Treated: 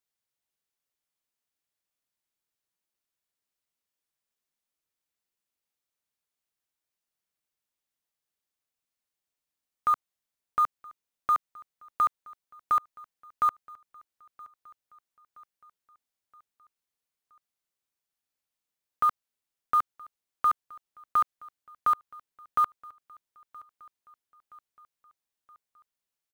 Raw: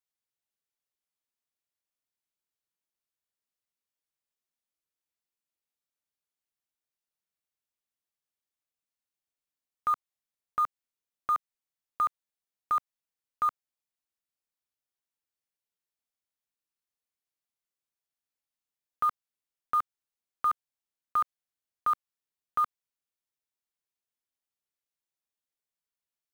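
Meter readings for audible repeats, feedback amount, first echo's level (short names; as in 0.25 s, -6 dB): 3, 57%, -23.5 dB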